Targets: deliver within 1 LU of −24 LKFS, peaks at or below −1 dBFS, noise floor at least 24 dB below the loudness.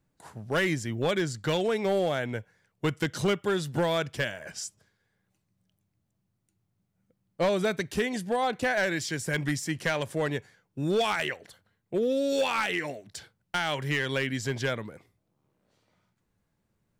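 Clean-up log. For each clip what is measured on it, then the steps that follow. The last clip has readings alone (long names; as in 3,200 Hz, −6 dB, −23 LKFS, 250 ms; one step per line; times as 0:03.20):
share of clipped samples 1.0%; peaks flattened at −20.0 dBFS; integrated loudness −29.0 LKFS; sample peak −20.0 dBFS; target loudness −24.0 LKFS
→ clipped peaks rebuilt −20 dBFS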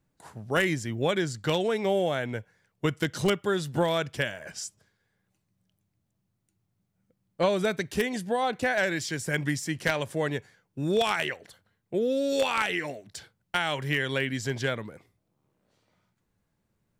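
share of clipped samples 0.0%; integrated loudness −28.5 LKFS; sample peak −11.0 dBFS; target loudness −24.0 LKFS
→ level +4.5 dB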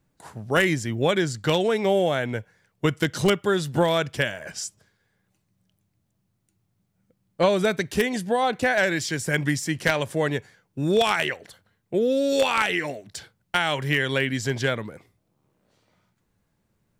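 integrated loudness −24.0 LKFS; sample peak −6.5 dBFS; background noise floor −73 dBFS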